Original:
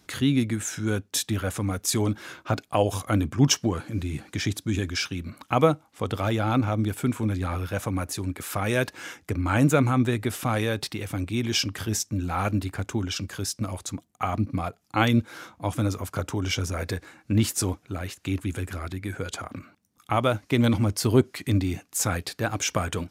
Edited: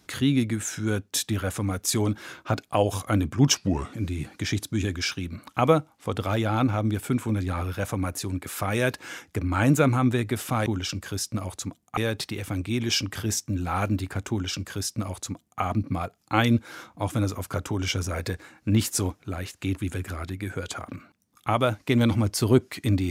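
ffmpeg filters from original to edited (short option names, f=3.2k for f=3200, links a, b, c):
-filter_complex "[0:a]asplit=5[a][b][c][d][e];[a]atrim=end=3.554[f];[b]atrim=start=3.55:end=3.87,asetpts=PTS-STARTPTS,asetrate=37044,aresample=44100[g];[c]atrim=start=3.866:end=10.602[h];[d]atrim=start=12.928:end=14.242[i];[e]atrim=start=10.598[j];[f][g]acrossfade=d=0.004:c1=hsin:c2=hsin[k];[k][h]acrossfade=d=0.004:c1=hsin:c2=hsin[l];[l][i]acrossfade=d=0.004:c1=hsin:c2=hsin[m];[m][j]acrossfade=d=0.004:c1=hsin:c2=hsin"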